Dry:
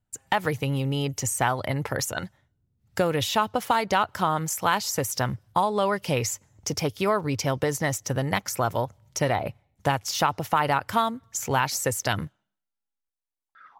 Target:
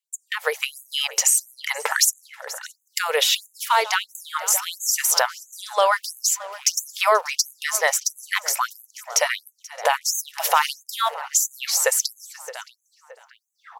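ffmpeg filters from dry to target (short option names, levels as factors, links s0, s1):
-filter_complex "[0:a]aecho=1:1:483:0.0891,asettb=1/sr,asplit=3[s0][s1][s2];[s0]atrim=end=1.924[s3];[s1]atrim=start=1.92:end=2.99,asetpts=PTS-STARTPTS,afade=t=in:d=0.004:c=qsin,afade=t=out:st=1.066:d=0.004:c=qsin,acontrast=48[s4];[s2]atrim=start=2.986[s5];[s3][s4]acrossfade=d=0.004:c1=hsin:c2=qsin[s6];[s6][s5]acrossfade=d=0.004:c1=qsin:c2=hsin,asplit=3[s7][s8][s9];[s7]afade=t=out:st=10.3:d=0.02[s10];[s8]highshelf=f=2500:g=9,afade=t=in:st=10.3:d=0.02,afade=t=out:st=10.72:d=0.02[s11];[s9]afade=t=in:st=10.72:d=0.02[s12];[s10][s11][s12]amix=inputs=3:normalize=0,alimiter=limit=0.158:level=0:latency=1:release=450,dynaudnorm=f=120:g=7:m=2.51,asplit=2[s13][s14];[s14]adelay=620,lowpass=f=2300:p=1,volume=0.158,asplit=2[s15][s16];[s16]adelay=620,lowpass=f=2300:p=1,volume=0.5,asplit=2[s17][s18];[s18]adelay=620,lowpass=f=2300:p=1,volume=0.5,asplit=2[s19][s20];[s20]adelay=620,lowpass=f=2300:p=1,volume=0.5[s21];[s15][s17][s19][s21]amix=inputs=4:normalize=0[s22];[s13][s22]amix=inputs=2:normalize=0,asettb=1/sr,asplit=3[s23][s24][s25];[s23]atrim=end=5.914[s26];[s24]atrim=start=5.91:end=6.89,asetpts=PTS-STARTPTS,afade=t=in:d=0.004:c=qsin,afade=t=out:st=0.976:d=0.004:c=qsin,aeval=exprs='sgn(val(0))*max(abs(val(0))-0.00447,0)':c=same[s27];[s25]atrim=start=6.886[s28];[s26][s27]acrossfade=d=0.004:c1=hsin:c2=qsin[s29];[s29][s28]acrossfade=d=0.004:c1=qsin:c2=hsin,lowshelf=f=310:g=-11.5,afftfilt=real='re*gte(b*sr/1024,390*pow(6300/390,0.5+0.5*sin(2*PI*1.5*pts/sr)))':imag='im*gte(b*sr/1024,390*pow(6300/390,0.5+0.5*sin(2*PI*1.5*pts/sr)))':win_size=1024:overlap=0.75,volume=1.68"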